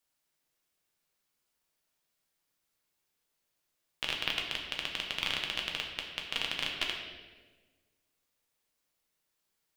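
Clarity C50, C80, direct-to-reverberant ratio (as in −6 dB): 4.0 dB, 5.5 dB, 0.0 dB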